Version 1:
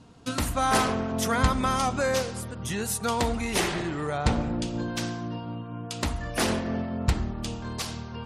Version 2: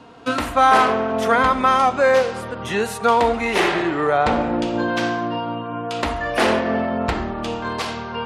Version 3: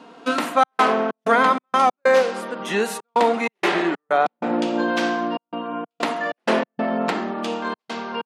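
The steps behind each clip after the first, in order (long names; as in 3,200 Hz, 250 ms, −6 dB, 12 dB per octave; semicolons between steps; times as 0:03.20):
three-way crossover with the lows and the highs turned down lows −15 dB, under 310 Hz, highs −14 dB, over 3,500 Hz; harmonic and percussive parts rebalanced harmonic +8 dB; in parallel at +3 dB: speech leveller within 4 dB 0.5 s; on the sum: level −2 dB
gate pattern "xxxx.xx.xx.x.xx" 95 BPM −60 dB; linear-phase brick-wall high-pass 160 Hz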